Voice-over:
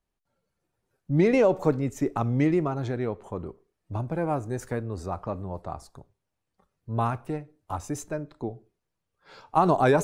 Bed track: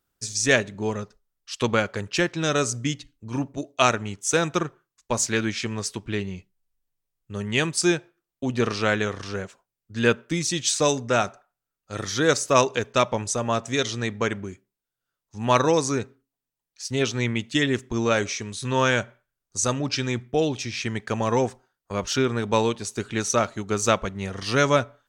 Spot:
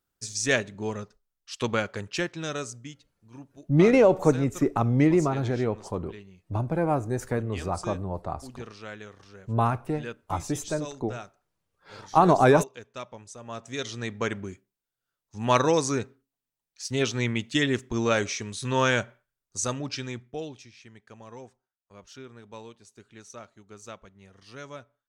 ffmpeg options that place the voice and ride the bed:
-filter_complex "[0:a]adelay=2600,volume=1.33[s0];[1:a]volume=3.76,afade=t=out:st=2:d=0.96:silence=0.211349,afade=t=in:st=13.39:d=1.11:silence=0.158489,afade=t=out:st=19.11:d=1.63:silence=0.1[s1];[s0][s1]amix=inputs=2:normalize=0"

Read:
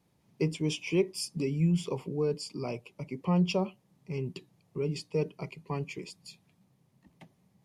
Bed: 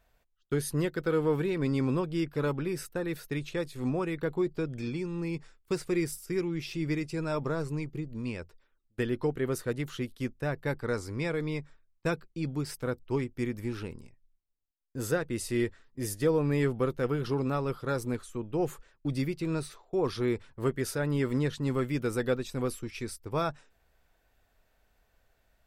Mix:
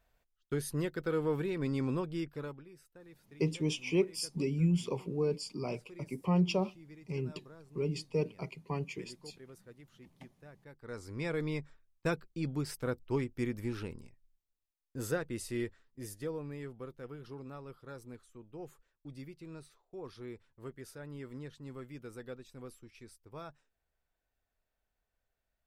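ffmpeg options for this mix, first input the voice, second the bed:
-filter_complex "[0:a]adelay=3000,volume=0.794[s0];[1:a]volume=5.62,afade=t=out:st=2.09:d=0.56:silence=0.133352,afade=t=in:st=10.77:d=0.63:silence=0.1,afade=t=out:st=14.53:d=2.05:silence=0.199526[s1];[s0][s1]amix=inputs=2:normalize=0"

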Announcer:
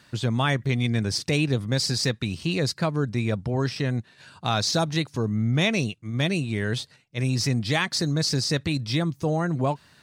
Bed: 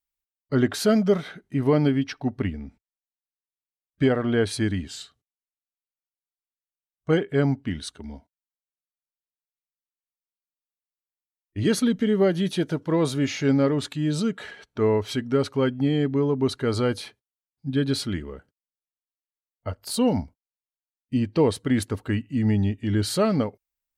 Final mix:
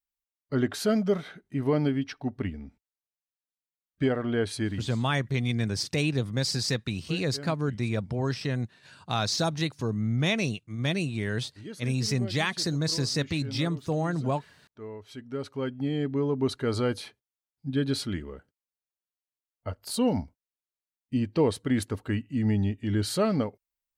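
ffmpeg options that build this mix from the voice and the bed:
-filter_complex "[0:a]adelay=4650,volume=0.668[s0];[1:a]volume=3.55,afade=t=out:st=4.66:d=0.37:silence=0.188365,afade=t=in:st=14.99:d=1.42:silence=0.158489[s1];[s0][s1]amix=inputs=2:normalize=0"

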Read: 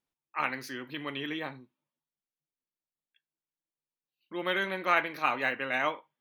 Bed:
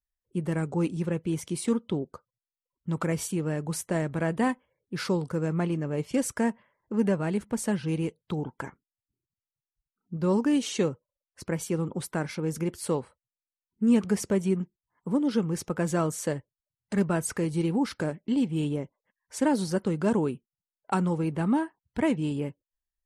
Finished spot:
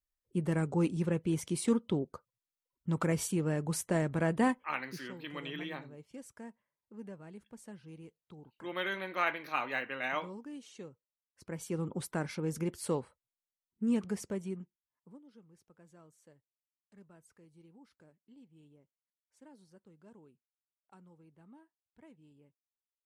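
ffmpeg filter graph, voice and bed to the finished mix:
-filter_complex "[0:a]adelay=4300,volume=0.531[s0];[1:a]volume=5.01,afade=t=out:st=4.79:d=0.22:silence=0.112202,afade=t=in:st=11.27:d=0.65:silence=0.149624,afade=t=out:st=13.2:d=2.02:silence=0.0421697[s1];[s0][s1]amix=inputs=2:normalize=0"

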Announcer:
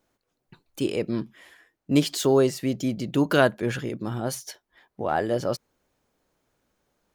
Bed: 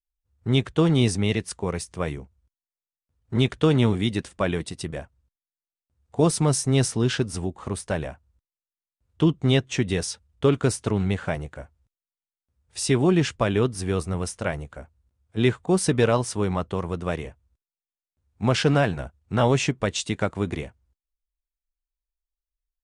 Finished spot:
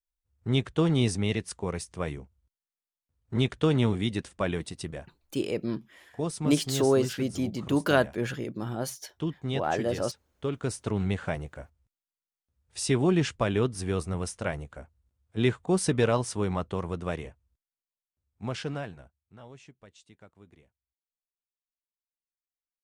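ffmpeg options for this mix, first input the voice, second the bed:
-filter_complex "[0:a]adelay=4550,volume=0.668[s0];[1:a]volume=1.41,afade=t=out:st=4.84:d=0.42:silence=0.446684,afade=t=in:st=10.53:d=0.52:silence=0.421697,afade=t=out:st=16.9:d=2.48:silence=0.0595662[s1];[s0][s1]amix=inputs=2:normalize=0"

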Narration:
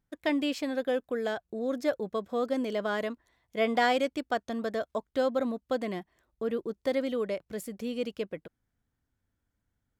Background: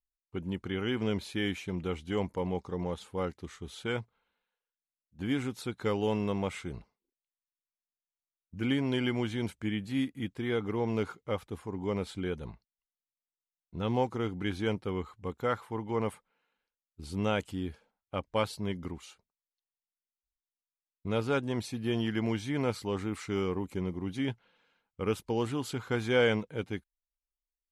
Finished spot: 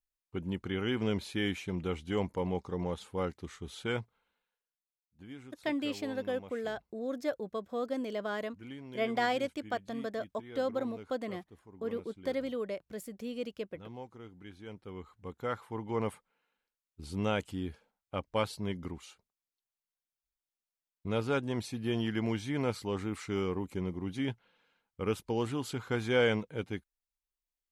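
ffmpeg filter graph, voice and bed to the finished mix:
-filter_complex "[0:a]adelay=5400,volume=0.562[s0];[1:a]volume=5.31,afade=t=out:st=4.35:d=0.91:silence=0.158489,afade=t=in:st=14.65:d=1.35:silence=0.177828[s1];[s0][s1]amix=inputs=2:normalize=0"

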